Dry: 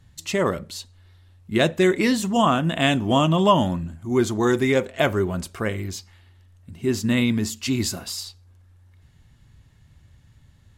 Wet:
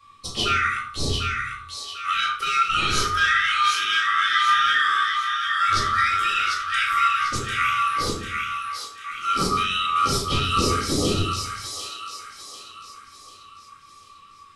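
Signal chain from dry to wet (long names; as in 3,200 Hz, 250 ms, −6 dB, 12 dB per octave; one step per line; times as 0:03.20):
band-splitting scrambler in four parts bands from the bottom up 4123
graphic EQ with 10 bands 125 Hz +10 dB, 500 Hz +7 dB, 1,000 Hz −11 dB, 2,000 Hz −9 dB, 8,000 Hz −4 dB
brickwall limiter −22 dBFS, peak gain reduction 11.5 dB
on a send: delay with a high-pass on its return 552 ms, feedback 42%, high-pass 1,600 Hz, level −4 dB
on the sum: rectangular room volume 330 cubic metres, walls furnished, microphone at 3.4 metres
wrong playback speed 45 rpm record played at 33 rpm
level +5 dB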